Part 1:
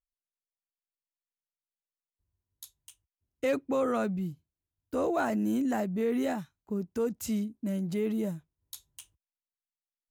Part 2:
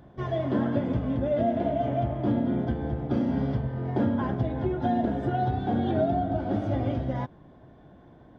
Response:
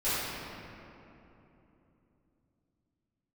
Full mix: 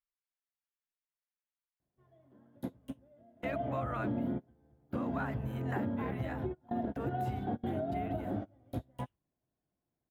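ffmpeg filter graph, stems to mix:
-filter_complex "[0:a]deesser=0.75,firequalizer=gain_entry='entry(100,0);entry(280,-7);entry(880,10);entry(1700,13);entry(6500,-4);entry(12000,7)':delay=0.05:min_phase=1,volume=-11.5dB,asplit=2[link_01][link_02];[1:a]highshelf=frequency=3900:gain=-7,adelay=1800,volume=-5.5dB[link_03];[link_02]apad=whole_len=449083[link_04];[link_03][link_04]sidechaingate=range=-31dB:threshold=-57dB:ratio=16:detection=peak[link_05];[link_01][link_05]amix=inputs=2:normalize=0,highshelf=frequency=4900:gain=-7,alimiter=level_in=1.5dB:limit=-24dB:level=0:latency=1:release=307,volume=-1.5dB"

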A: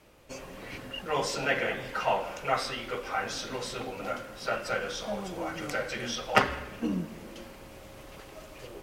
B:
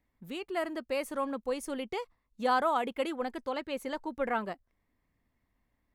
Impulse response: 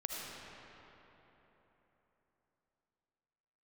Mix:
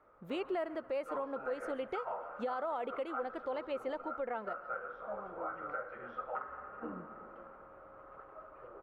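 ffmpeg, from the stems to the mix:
-filter_complex "[0:a]lowpass=frequency=1300:width_type=q:width=7.7,volume=-18.5dB,asplit=2[link_01][link_02];[link_02]volume=-17dB[link_03];[1:a]volume=-3dB,asplit=2[link_04][link_05];[link_05]volume=-22dB[link_06];[2:a]atrim=start_sample=2205[link_07];[link_03][link_07]afir=irnorm=-1:irlink=0[link_08];[link_06]aecho=0:1:138|276|414|552|690:1|0.39|0.152|0.0593|0.0231[link_09];[link_01][link_04][link_08][link_09]amix=inputs=4:normalize=0,firequalizer=gain_entry='entry(190,0);entry(510,11);entry(1000,6);entry(5300,-6);entry(11000,-11)':delay=0.05:min_phase=1,alimiter=level_in=4.5dB:limit=-24dB:level=0:latency=1:release=486,volume=-4.5dB"

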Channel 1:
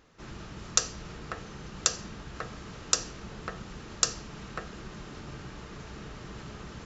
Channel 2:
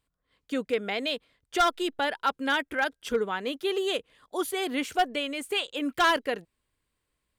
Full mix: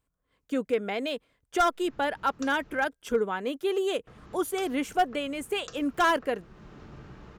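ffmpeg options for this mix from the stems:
ffmpeg -i stem1.wav -i stem2.wav -filter_complex "[0:a]adelay=1650,volume=-3.5dB,asplit=3[link_01][link_02][link_03];[link_01]atrim=end=2.88,asetpts=PTS-STARTPTS,afade=type=out:start_time=2.876:duration=0.004:curve=hsin[link_04];[link_02]atrim=start=2.88:end=4.07,asetpts=PTS-STARTPTS,volume=0[link_05];[link_03]atrim=start=4.07,asetpts=PTS-STARTPTS,afade=type=in:duration=0.004:curve=hsin[link_06];[link_04][link_05][link_06]concat=n=3:v=0:a=1[link_07];[1:a]bandreject=frequency=1900:width=28,aexciter=amount=5.1:drive=1.4:freq=5800,volume=1.5dB,asplit=2[link_08][link_09];[link_09]apad=whole_len=375185[link_10];[link_07][link_10]sidechaincompress=threshold=-33dB:ratio=3:attack=11:release=470[link_11];[link_11][link_08]amix=inputs=2:normalize=0,lowpass=frequency=1600:poles=1" out.wav

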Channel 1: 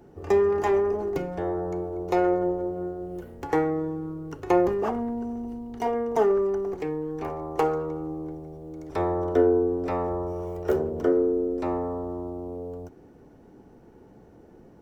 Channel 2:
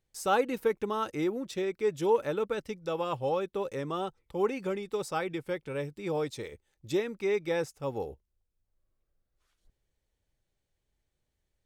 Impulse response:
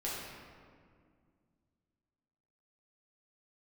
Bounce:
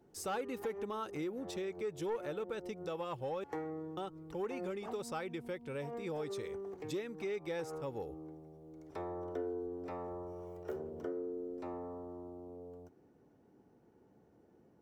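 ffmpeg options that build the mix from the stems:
-filter_complex "[0:a]highpass=85,volume=-14dB[link_01];[1:a]asoftclip=type=tanh:threshold=-20dB,volume=-4dB,asplit=3[link_02][link_03][link_04];[link_02]atrim=end=3.44,asetpts=PTS-STARTPTS,afade=type=out:start_time=3.436:duration=0.004:curve=hsin[link_05];[link_03]atrim=start=3.44:end=3.97,asetpts=PTS-STARTPTS,volume=0[link_06];[link_04]atrim=start=3.97,asetpts=PTS-STARTPTS,afade=type=in:duration=0.004:curve=hsin[link_07];[link_05][link_06][link_07]concat=n=3:v=0:a=1,asplit=2[link_08][link_09];[link_09]apad=whole_len=653541[link_10];[link_01][link_10]sidechaincompress=threshold=-46dB:ratio=3:attack=5.5:release=103[link_11];[link_11][link_08]amix=inputs=2:normalize=0,acompressor=threshold=-39dB:ratio=2"

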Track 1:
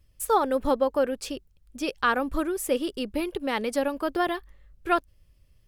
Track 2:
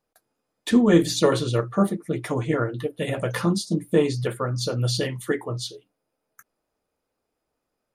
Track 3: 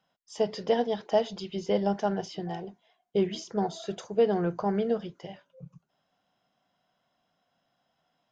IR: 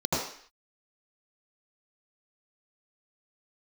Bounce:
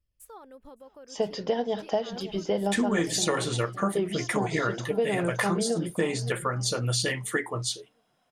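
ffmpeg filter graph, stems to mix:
-filter_complex "[0:a]alimiter=limit=-21dB:level=0:latency=1:release=243,volume=-18dB,asplit=2[link_01][link_02];[link_02]volume=-23dB[link_03];[1:a]equalizer=frequency=1000:width_type=o:width=1:gain=4,equalizer=frequency=2000:width_type=o:width=1:gain=10,equalizer=frequency=8000:width_type=o:width=1:gain=11,adelay=2050,volume=-3.5dB[link_04];[2:a]adelay=800,volume=3dB,asplit=2[link_05][link_06];[link_06]volume=-17.5dB[link_07];[link_03][link_07]amix=inputs=2:normalize=0,aecho=0:1:564|1128|1692|2256:1|0.31|0.0961|0.0298[link_08];[link_01][link_04][link_05][link_08]amix=inputs=4:normalize=0,acompressor=threshold=-23dB:ratio=4"

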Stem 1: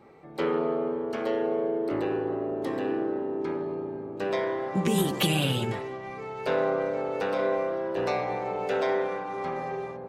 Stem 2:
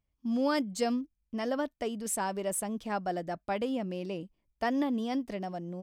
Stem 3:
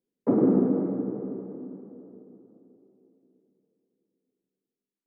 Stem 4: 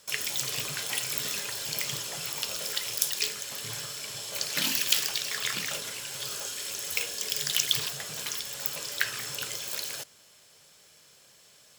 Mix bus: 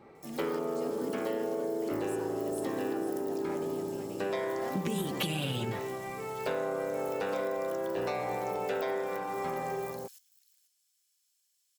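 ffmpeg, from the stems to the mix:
ffmpeg -i stem1.wav -i stem2.wav -i stem3.wav -i stem4.wav -filter_complex "[0:a]volume=-1dB[link_01];[1:a]acontrast=71,acrusher=bits=3:mode=log:mix=0:aa=0.000001,volume=-19.5dB,asplit=2[link_02][link_03];[link_03]volume=-7.5dB[link_04];[2:a]adelay=600,volume=-17dB[link_05];[3:a]acompressor=threshold=-30dB:ratio=6,aderivative,adelay=150,volume=-17dB,asplit=2[link_06][link_07];[link_07]volume=-16.5dB[link_08];[link_04][link_08]amix=inputs=2:normalize=0,aecho=0:1:491:1[link_09];[link_01][link_02][link_05][link_06][link_09]amix=inputs=5:normalize=0,acompressor=threshold=-29dB:ratio=6" out.wav

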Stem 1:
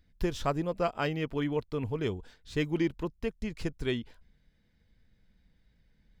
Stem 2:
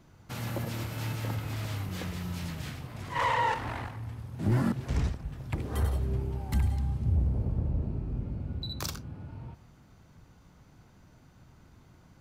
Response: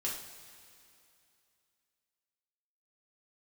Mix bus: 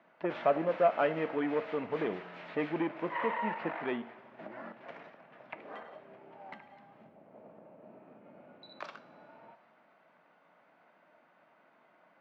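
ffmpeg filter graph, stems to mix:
-filter_complex "[0:a]asoftclip=type=tanh:threshold=-26dB,volume=2.5dB,asplit=2[link_01][link_02];[link_02]volume=-12.5dB[link_03];[1:a]acompressor=threshold=-33dB:ratio=6,aemphasis=mode=production:type=riaa,volume=-2dB,asplit=2[link_04][link_05];[link_05]volume=-12dB[link_06];[2:a]atrim=start_sample=2205[link_07];[link_03][link_06]amix=inputs=2:normalize=0[link_08];[link_08][link_07]afir=irnorm=-1:irlink=0[link_09];[link_01][link_04][link_09]amix=inputs=3:normalize=0,highpass=frequency=220:width=0.5412,highpass=frequency=220:width=1.3066,equalizer=frequency=260:width_type=q:width=4:gain=-5,equalizer=frequency=380:width_type=q:width=4:gain=-6,equalizer=frequency=630:width_type=q:width=4:gain=9,lowpass=frequency=2300:width=0.5412,lowpass=frequency=2300:width=1.3066"

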